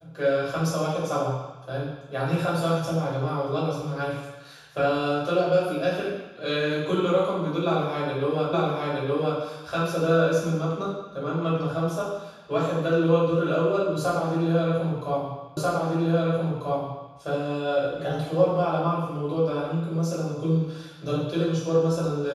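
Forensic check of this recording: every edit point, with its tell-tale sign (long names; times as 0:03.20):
0:08.53: the same again, the last 0.87 s
0:15.57: the same again, the last 1.59 s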